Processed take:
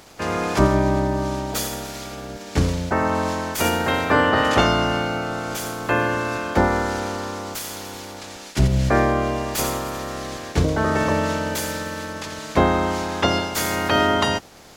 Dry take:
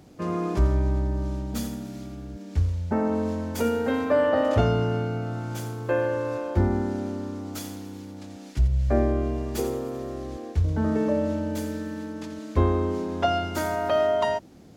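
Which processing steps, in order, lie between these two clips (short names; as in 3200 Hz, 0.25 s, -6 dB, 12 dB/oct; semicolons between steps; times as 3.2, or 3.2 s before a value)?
spectral limiter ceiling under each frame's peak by 22 dB; gain +4 dB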